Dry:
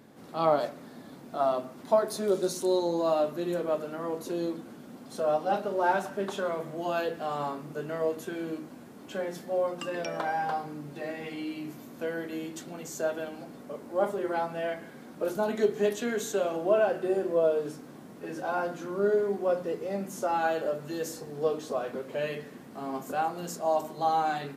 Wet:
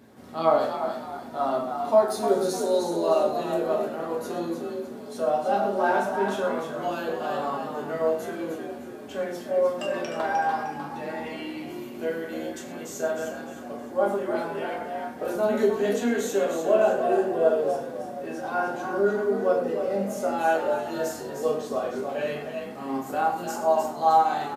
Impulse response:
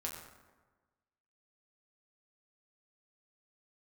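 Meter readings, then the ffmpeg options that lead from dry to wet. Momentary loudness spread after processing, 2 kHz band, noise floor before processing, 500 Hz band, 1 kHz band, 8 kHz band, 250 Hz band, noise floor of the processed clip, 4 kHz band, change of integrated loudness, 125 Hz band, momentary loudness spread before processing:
12 LU, +4.0 dB, -48 dBFS, +4.0 dB, +5.0 dB, +2.5 dB, +3.5 dB, -39 dBFS, +2.5 dB, +4.0 dB, +0.5 dB, 14 LU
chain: -filter_complex "[0:a]asplit=5[s0][s1][s2][s3][s4];[s1]adelay=305,afreqshift=46,volume=0.447[s5];[s2]adelay=610,afreqshift=92,volume=0.166[s6];[s3]adelay=915,afreqshift=138,volume=0.061[s7];[s4]adelay=1220,afreqshift=184,volume=0.0226[s8];[s0][s5][s6][s7][s8]amix=inputs=5:normalize=0[s9];[1:a]atrim=start_sample=2205,afade=t=out:st=0.18:d=0.01,atrim=end_sample=8379[s10];[s9][s10]afir=irnorm=-1:irlink=0,volume=1.41"

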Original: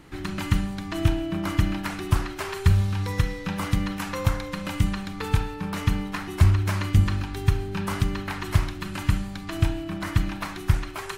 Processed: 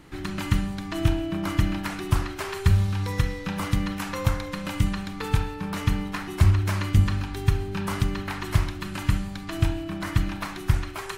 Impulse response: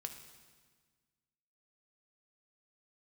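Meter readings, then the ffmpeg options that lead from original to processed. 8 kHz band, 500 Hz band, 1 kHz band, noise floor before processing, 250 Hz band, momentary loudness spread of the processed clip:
0.0 dB, 0.0 dB, -0.5 dB, -36 dBFS, 0.0 dB, 9 LU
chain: -af "bandreject=f=86.12:t=h:w=4,bandreject=f=172.24:t=h:w=4,bandreject=f=258.36:t=h:w=4,bandreject=f=344.48:t=h:w=4,bandreject=f=430.6:t=h:w=4,bandreject=f=516.72:t=h:w=4,bandreject=f=602.84:t=h:w=4,bandreject=f=688.96:t=h:w=4,bandreject=f=775.08:t=h:w=4,bandreject=f=861.2:t=h:w=4,bandreject=f=947.32:t=h:w=4,bandreject=f=1033.44:t=h:w=4,bandreject=f=1119.56:t=h:w=4,bandreject=f=1205.68:t=h:w=4,bandreject=f=1291.8:t=h:w=4,bandreject=f=1377.92:t=h:w=4,bandreject=f=1464.04:t=h:w=4,bandreject=f=1550.16:t=h:w=4,bandreject=f=1636.28:t=h:w=4,bandreject=f=1722.4:t=h:w=4,bandreject=f=1808.52:t=h:w=4,bandreject=f=1894.64:t=h:w=4,bandreject=f=1980.76:t=h:w=4,bandreject=f=2066.88:t=h:w=4,bandreject=f=2153:t=h:w=4,bandreject=f=2239.12:t=h:w=4,bandreject=f=2325.24:t=h:w=4,bandreject=f=2411.36:t=h:w=4,bandreject=f=2497.48:t=h:w=4,bandreject=f=2583.6:t=h:w=4,bandreject=f=2669.72:t=h:w=4,bandreject=f=2755.84:t=h:w=4,bandreject=f=2841.96:t=h:w=4,bandreject=f=2928.08:t=h:w=4,bandreject=f=3014.2:t=h:w=4"

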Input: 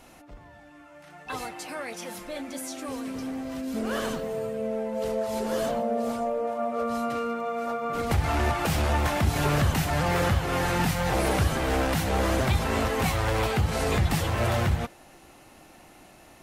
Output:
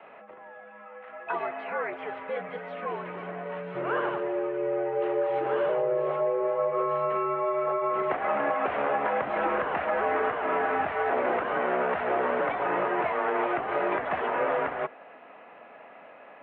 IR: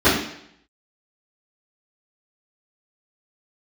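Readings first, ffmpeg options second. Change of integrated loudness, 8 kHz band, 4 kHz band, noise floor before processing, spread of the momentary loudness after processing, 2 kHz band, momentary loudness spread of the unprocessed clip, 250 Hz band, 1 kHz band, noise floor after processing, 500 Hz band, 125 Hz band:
-1.0 dB, under -40 dB, under -10 dB, -52 dBFS, 10 LU, 0.0 dB, 11 LU, -6.5 dB, +2.0 dB, -49 dBFS, +2.5 dB, -20.5 dB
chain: -filter_complex "[0:a]highpass=f=250:t=q:w=0.5412,highpass=f=250:t=q:w=1.307,lowpass=f=3300:t=q:w=0.5176,lowpass=f=3300:t=q:w=0.7071,lowpass=f=3300:t=q:w=1.932,afreqshift=-85,acrossover=split=410 2400:gain=0.126 1 0.0708[s0][s1][s2];[s0][s1][s2]amix=inputs=3:normalize=0,acrossover=split=460|2000[s3][s4][s5];[s3]acompressor=threshold=0.0126:ratio=4[s6];[s4]acompressor=threshold=0.02:ratio=4[s7];[s5]acompressor=threshold=0.00224:ratio=4[s8];[s6][s7][s8]amix=inputs=3:normalize=0,volume=2.37"

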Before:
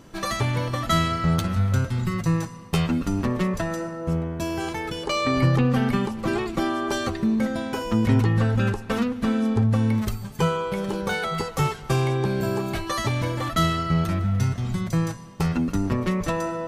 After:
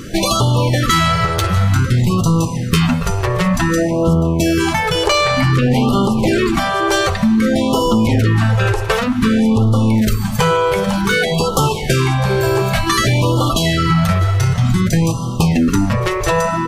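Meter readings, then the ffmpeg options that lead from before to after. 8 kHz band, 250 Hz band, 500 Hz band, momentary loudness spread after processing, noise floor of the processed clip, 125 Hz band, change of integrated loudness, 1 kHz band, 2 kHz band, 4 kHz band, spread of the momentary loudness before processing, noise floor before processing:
+13.0 dB, +8.5 dB, +10.0 dB, 3 LU, -21 dBFS, +8.5 dB, +9.0 dB, +10.0 dB, +11.0 dB, +12.5 dB, 7 LU, -38 dBFS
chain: -filter_complex "[0:a]apsyclip=11.2,bandreject=f=50.98:t=h:w=4,bandreject=f=101.96:t=h:w=4,bandreject=f=152.94:t=h:w=4,bandreject=f=203.92:t=h:w=4,bandreject=f=254.9:t=h:w=4,bandreject=f=305.88:t=h:w=4,bandreject=f=356.86:t=h:w=4,bandreject=f=407.84:t=h:w=4,bandreject=f=458.82:t=h:w=4,bandreject=f=509.8:t=h:w=4,bandreject=f=560.78:t=h:w=4,bandreject=f=611.76:t=h:w=4,bandreject=f=662.74:t=h:w=4,bandreject=f=713.72:t=h:w=4,bandreject=f=764.7:t=h:w=4,bandreject=f=815.68:t=h:w=4,bandreject=f=866.66:t=h:w=4,bandreject=f=917.64:t=h:w=4,bandreject=f=968.62:t=h:w=4,bandreject=f=1019.6:t=h:w=4,bandreject=f=1070.58:t=h:w=4,bandreject=f=1121.56:t=h:w=4,bandreject=f=1172.54:t=h:w=4,bandreject=f=1223.52:t=h:w=4,bandreject=f=1274.5:t=h:w=4,bandreject=f=1325.48:t=h:w=4,asplit=2[s0][s1];[s1]aecho=0:1:651:0.141[s2];[s0][s2]amix=inputs=2:normalize=0,acompressor=threshold=0.355:ratio=6,afftfilt=real='re*(1-between(b*sr/1024,220*pow(2000/220,0.5+0.5*sin(2*PI*0.54*pts/sr))/1.41,220*pow(2000/220,0.5+0.5*sin(2*PI*0.54*pts/sr))*1.41))':imag='im*(1-between(b*sr/1024,220*pow(2000/220,0.5+0.5*sin(2*PI*0.54*pts/sr))/1.41,220*pow(2000/220,0.5+0.5*sin(2*PI*0.54*pts/sr))*1.41))':win_size=1024:overlap=0.75,volume=0.794"

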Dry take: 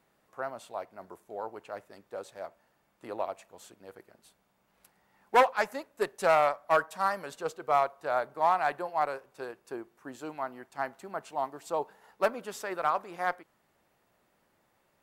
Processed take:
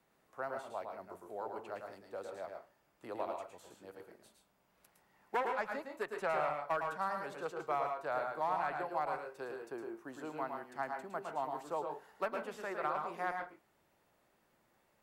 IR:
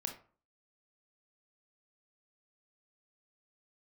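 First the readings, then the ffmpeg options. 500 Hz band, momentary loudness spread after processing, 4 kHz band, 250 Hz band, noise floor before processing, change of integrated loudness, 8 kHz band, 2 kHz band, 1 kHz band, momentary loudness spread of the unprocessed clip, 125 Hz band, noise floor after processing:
-8.0 dB, 12 LU, -10.5 dB, -4.5 dB, -72 dBFS, -8.5 dB, under -10 dB, -7.0 dB, -8.0 dB, 19 LU, -4.5 dB, -74 dBFS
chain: -filter_complex "[0:a]acrossover=split=320|760|2900[s0][s1][s2][s3];[s0]acompressor=threshold=0.00501:ratio=4[s4];[s1]acompressor=threshold=0.0126:ratio=4[s5];[s2]acompressor=threshold=0.0251:ratio=4[s6];[s3]acompressor=threshold=0.00112:ratio=4[s7];[s4][s5][s6][s7]amix=inputs=4:normalize=0,asplit=2[s8][s9];[1:a]atrim=start_sample=2205,asetrate=70560,aresample=44100,adelay=110[s10];[s9][s10]afir=irnorm=-1:irlink=0,volume=1.12[s11];[s8][s11]amix=inputs=2:normalize=0,volume=0.631"

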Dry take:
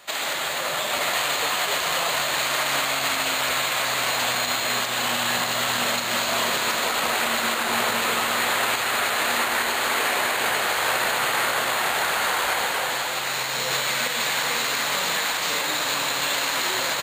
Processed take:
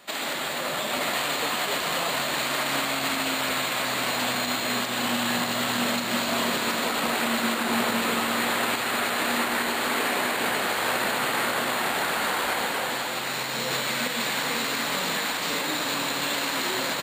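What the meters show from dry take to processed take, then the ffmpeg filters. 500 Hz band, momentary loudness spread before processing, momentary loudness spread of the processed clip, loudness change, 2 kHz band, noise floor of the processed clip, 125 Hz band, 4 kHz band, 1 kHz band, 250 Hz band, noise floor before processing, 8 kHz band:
-1.0 dB, 2 LU, 2 LU, -3.0 dB, -3.5 dB, -30 dBFS, +1.0 dB, -3.5 dB, -3.0 dB, +6.5 dB, -27 dBFS, -4.5 dB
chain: -af "equalizer=f=240:w=1.1:g=11,bandreject=f=6500:w=11,volume=0.668"

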